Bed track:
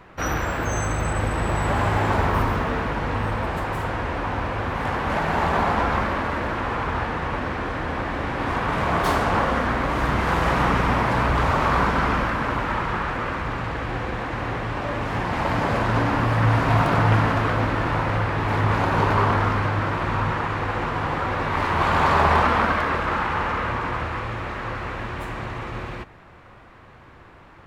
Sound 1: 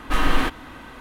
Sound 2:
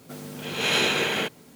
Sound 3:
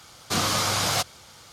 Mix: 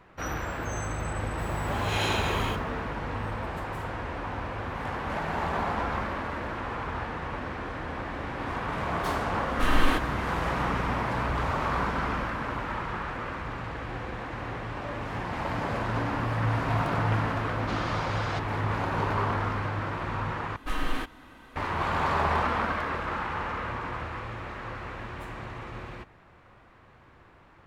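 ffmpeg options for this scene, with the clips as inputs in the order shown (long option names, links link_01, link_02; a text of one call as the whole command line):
ffmpeg -i bed.wav -i cue0.wav -i cue1.wav -i cue2.wav -filter_complex "[1:a]asplit=2[link_01][link_02];[0:a]volume=-8dB[link_03];[2:a]agate=range=-33dB:threshold=-38dB:ratio=3:release=100:detection=peak[link_04];[link_01]dynaudnorm=framelen=130:gausssize=3:maxgain=4dB[link_05];[3:a]lowpass=2500[link_06];[link_03]asplit=2[link_07][link_08];[link_07]atrim=end=20.564[link_09];[link_02]atrim=end=1,asetpts=PTS-STARTPTS,volume=-10dB[link_10];[link_08]atrim=start=21.556[link_11];[link_04]atrim=end=1.55,asetpts=PTS-STARTPTS,volume=-8.5dB,afade=type=in:duration=0.004:curve=hsin,afade=type=out:start_time=1.546:duration=0.004:curve=hsin,adelay=1280[link_12];[link_05]atrim=end=1,asetpts=PTS-STARTPTS,volume=-6dB,afade=type=in:duration=0.004:curve=hsin,afade=type=out:start_time=0.996:duration=0.004:curve=hsin,adelay=9490[link_13];[link_06]atrim=end=1.52,asetpts=PTS-STARTPTS,volume=-7.5dB,afade=type=in:duration=0.004:curve=hsin,afade=type=out:start_time=1.516:duration=0.004:curve=hsin,adelay=17370[link_14];[link_09][link_10]acrossfade=duration=0.004:curve1=hsin:curve2=hsin[link_15];[link_15][link_11]acrossfade=duration=0.004:curve1=hsin:curve2=hsin[link_16];[link_16][link_12][link_13][link_14]amix=inputs=4:normalize=0" out.wav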